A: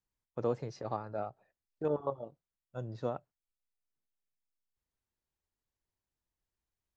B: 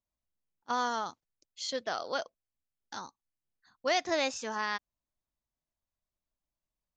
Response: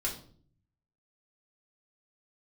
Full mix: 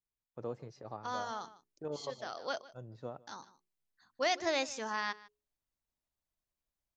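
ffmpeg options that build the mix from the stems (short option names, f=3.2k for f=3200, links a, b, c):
-filter_complex "[0:a]volume=-8dB,asplit=3[a][b][c];[b]volume=-22.5dB[d];[1:a]bandreject=f=60:t=h:w=6,bandreject=f=120:t=h:w=6,bandreject=f=180:t=h:w=6,bandreject=f=240:t=h:w=6,bandreject=f=300:t=h:w=6,bandreject=f=360:t=h:w=6,bandreject=f=420:t=h:w=6,adelay=350,volume=-2.5dB,asplit=2[e][f];[f]volume=-20.5dB[g];[c]apad=whole_len=322785[h];[e][h]sidechaincompress=threshold=-45dB:ratio=8:attack=36:release=697[i];[d][g]amix=inputs=2:normalize=0,aecho=0:1:152:1[j];[a][i][j]amix=inputs=3:normalize=0"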